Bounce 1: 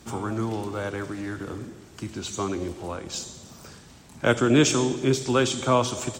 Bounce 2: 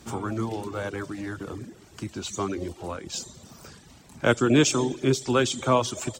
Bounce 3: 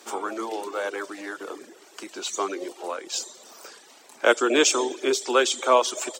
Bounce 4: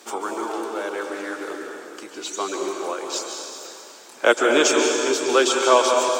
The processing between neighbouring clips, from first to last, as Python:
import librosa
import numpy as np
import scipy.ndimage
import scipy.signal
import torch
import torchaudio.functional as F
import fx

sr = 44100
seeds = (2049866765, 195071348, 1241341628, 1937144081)

y1 = fx.dereverb_blind(x, sr, rt60_s=0.54)
y2 = scipy.signal.sosfilt(scipy.signal.butter(4, 380.0, 'highpass', fs=sr, output='sos'), y1)
y2 = F.gain(torch.from_numpy(y2), 4.0).numpy()
y3 = fx.low_shelf(y2, sr, hz=89.0, db=8.0)
y3 = y3 * (1.0 - 0.33 / 2.0 + 0.33 / 2.0 * np.cos(2.0 * np.pi * 0.71 * (np.arange(len(y3)) / sr)))
y3 = fx.rev_plate(y3, sr, seeds[0], rt60_s=2.6, hf_ratio=0.85, predelay_ms=120, drr_db=1.5)
y3 = F.gain(torch.from_numpy(y3), 2.0).numpy()